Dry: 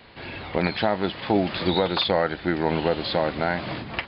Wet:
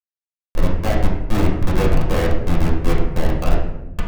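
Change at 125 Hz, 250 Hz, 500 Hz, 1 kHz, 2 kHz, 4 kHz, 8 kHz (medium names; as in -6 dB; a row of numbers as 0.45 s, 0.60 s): +11.0 dB, +3.0 dB, -0.5 dB, -1.5 dB, -2.0 dB, -8.0 dB, no reading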